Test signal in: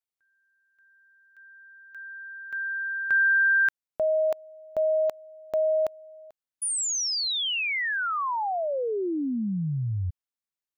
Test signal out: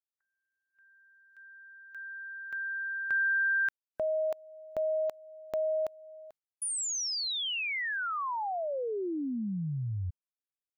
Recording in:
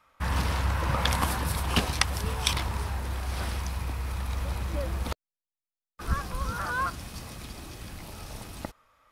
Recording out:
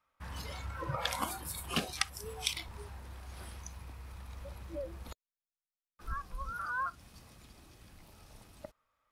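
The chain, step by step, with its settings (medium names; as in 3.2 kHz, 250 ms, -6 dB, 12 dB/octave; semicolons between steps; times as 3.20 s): spectral noise reduction 14 dB; in parallel at +2 dB: compression, threshold -37 dBFS; on the sum: trim -8.5 dB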